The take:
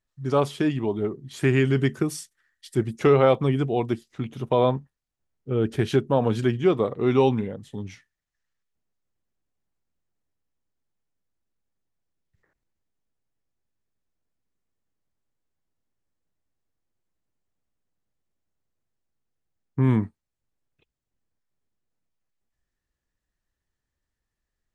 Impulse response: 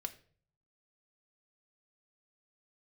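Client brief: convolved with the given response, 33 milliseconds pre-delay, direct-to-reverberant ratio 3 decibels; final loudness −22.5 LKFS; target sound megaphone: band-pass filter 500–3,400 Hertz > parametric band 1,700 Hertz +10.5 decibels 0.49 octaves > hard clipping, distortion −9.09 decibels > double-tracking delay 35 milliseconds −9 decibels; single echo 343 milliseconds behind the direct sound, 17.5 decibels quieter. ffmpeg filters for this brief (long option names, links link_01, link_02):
-filter_complex "[0:a]aecho=1:1:343:0.133,asplit=2[link_01][link_02];[1:a]atrim=start_sample=2205,adelay=33[link_03];[link_02][link_03]afir=irnorm=-1:irlink=0,volume=-1.5dB[link_04];[link_01][link_04]amix=inputs=2:normalize=0,highpass=500,lowpass=3400,equalizer=frequency=1700:width_type=o:width=0.49:gain=10.5,asoftclip=type=hard:threshold=-20dB,asplit=2[link_05][link_06];[link_06]adelay=35,volume=-9dB[link_07];[link_05][link_07]amix=inputs=2:normalize=0,volume=4.5dB"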